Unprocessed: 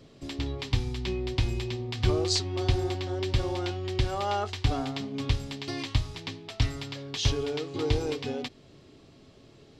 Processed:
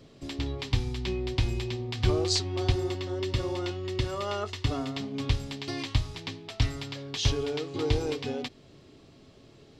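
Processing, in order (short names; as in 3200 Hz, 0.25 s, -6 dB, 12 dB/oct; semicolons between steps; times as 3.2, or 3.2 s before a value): 2.72–4.97 notch comb 790 Hz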